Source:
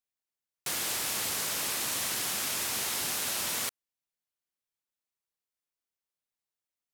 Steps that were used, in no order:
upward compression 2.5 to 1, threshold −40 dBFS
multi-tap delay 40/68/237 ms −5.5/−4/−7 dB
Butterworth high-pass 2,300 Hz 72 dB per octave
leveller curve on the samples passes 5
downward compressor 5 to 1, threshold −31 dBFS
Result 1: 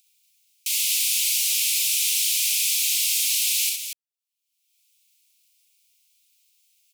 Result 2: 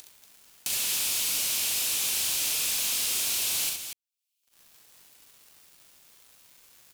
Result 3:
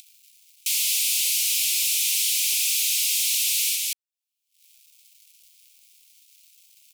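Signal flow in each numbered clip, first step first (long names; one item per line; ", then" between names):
downward compressor, then leveller curve on the samples, then Butterworth high-pass, then upward compression, then multi-tap delay
upward compression, then Butterworth high-pass, then leveller curve on the samples, then downward compressor, then multi-tap delay
downward compressor, then multi-tap delay, then upward compression, then leveller curve on the samples, then Butterworth high-pass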